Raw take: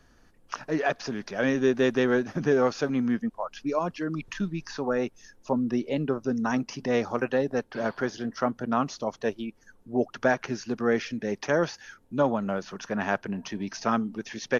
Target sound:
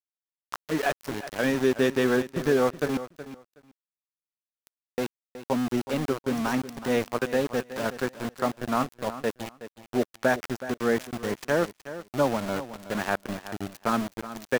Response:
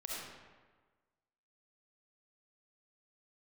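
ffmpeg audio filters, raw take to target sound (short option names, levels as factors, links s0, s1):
-filter_complex "[0:a]asettb=1/sr,asplit=3[s0][s1][s2];[s0]atrim=end=2.974[s3];[s1]atrim=start=2.97:end=4.98,asetpts=PTS-STARTPTS,afade=t=in:d=0.004:c=qsin,afade=t=out:st=2.006:d=0.004:c=qsin,aderivative[s4];[s2]atrim=start=4.976[s5];[s3][s4]acrossfade=d=0.004:c1=hsin:c2=qsin[s6];[s6][s5]acrossfade=d=0.004:c1=qsin:c2=hsin,aeval=exprs='val(0)*gte(abs(val(0)),0.0355)':c=same,aecho=1:1:371|742:0.211|0.0359"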